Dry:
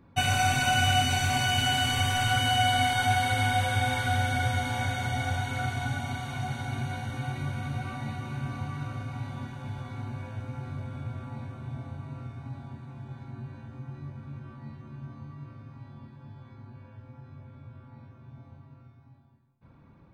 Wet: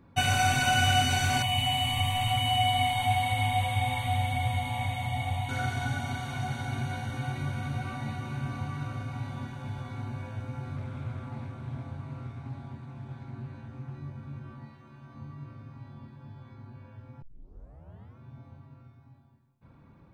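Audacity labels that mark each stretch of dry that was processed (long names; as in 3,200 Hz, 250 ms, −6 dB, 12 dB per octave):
1.420000	5.490000	phaser with its sweep stopped centre 1,500 Hz, stages 6
10.760000	13.950000	highs frequency-modulated by the lows depth 0.23 ms
14.650000	15.150000	low-shelf EQ 320 Hz −11 dB
17.220000	17.220000	tape start 0.96 s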